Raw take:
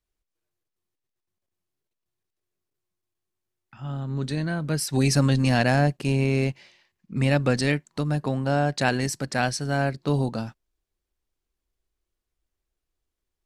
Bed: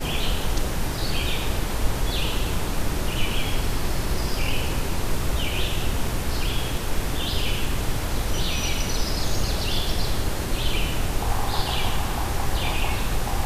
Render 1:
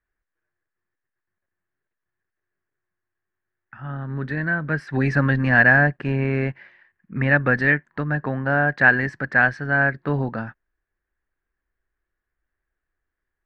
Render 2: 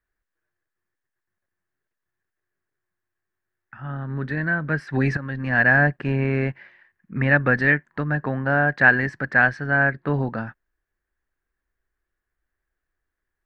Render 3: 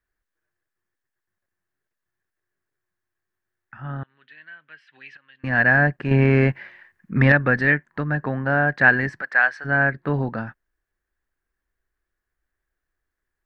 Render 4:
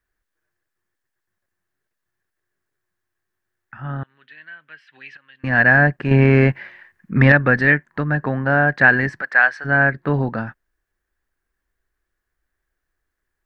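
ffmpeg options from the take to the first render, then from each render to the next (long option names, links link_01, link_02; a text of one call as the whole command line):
ffmpeg -i in.wav -af "lowpass=frequency=1700:width_type=q:width=6.2" out.wav
ffmpeg -i in.wav -filter_complex "[0:a]asettb=1/sr,asplit=3[link_01][link_02][link_03];[link_01]atrim=end=9.714[link_04];[link_02]atrim=start=9.71:end=10.14,asetpts=PTS-STARTPTS,afade=type=in:duration=0.004:curve=qsin,afade=type=out:start_time=0.426:duration=0.004:curve=qsin,lowpass=4300[link_05];[link_03]atrim=start=10.136[link_06];[link_04][link_05]acrossfade=duration=0.004:curve1=hsin:curve2=qsin[link_07];[link_07][link_06]acrossfade=duration=0.004:curve1=qsin:curve2=hsin,asplit=2[link_08][link_09];[link_08]atrim=end=5.17,asetpts=PTS-STARTPTS,afade=type=out:start_time=5.166:duration=0.004:curve=hsin:silence=0.141254[link_10];[link_09]atrim=start=5.17,asetpts=PTS-STARTPTS,afade=type=in:duration=0.71:silence=0.141254[link_11];[link_10][link_11]concat=n=2:v=0:a=1" out.wav
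ffmpeg -i in.wav -filter_complex "[0:a]asettb=1/sr,asplit=3[link_01][link_02][link_03];[link_01]atrim=end=4.034[link_04];[link_02]atrim=start=4.03:end=5.44,asetpts=PTS-STARTPTS,afade=type=in:duration=0.004:curve=qsin,afade=type=out:start_time=1.406:duration=0.004:curve=qsin,bandpass=frequency=3000:width_type=q:width=5.7[link_05];[link_03]atrim=start=5.436[link_06];[link_04][link_05]acrossfade=duration=0.004:curve1=hsin:curve2=qsin[link_07];[link_07][link_06]acrossfade=duration=0.004:curve1=qsin:curve2=hsin,asettb=1/sr,asplit=3[link_08][link_09][link_10];[link_08]atrim=end=6.114[link_11];[link_09]atrim=start=6.11:end=7.32,asetpts=PTS-STARTPTS,afade=type=in:duration=0.004:curve=qsin,afade=type=out:start_time=1.206:duration=0.004:curve=qsin,acontrast=61[link_12];[link_10]atrim=start=7.316[link_13];[link_11][link_12]acrossfade=duration=0.004:curve1=hsin:curve2=qsin[link_14];[link_14][link_13]acrossfade=duration=0.004:curve1=qsin:curve2=hsin,asplit=3[link_15][link_16][link_17];[link_15]afade=type=out:start_time=9.2:duration=0.02[link_18];[link_16]highpass=730,afade=type=in:start_time=9.2:duration=0.02,afade=type=out:start_time=9.64:duration=0.02[link_19];[link_17]afade=type=in:start_time=9.64:duration=0.02[link_20];[link_18][link_19][link_20]amix=inputs=3:normalize=0" out.wav
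ffmpeg -i in.wav -af "volume=3.5dB,alimiter=limit=-1dB:level=0:latency=1" out.wav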